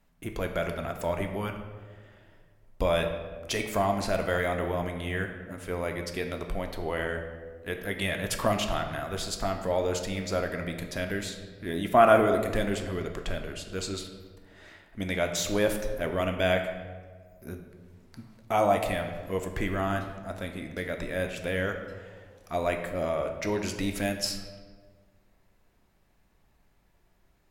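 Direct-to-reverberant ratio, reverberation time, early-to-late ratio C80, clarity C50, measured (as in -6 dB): 4.0 dB, 1.6 s, 9.0 dB, 7.0 dB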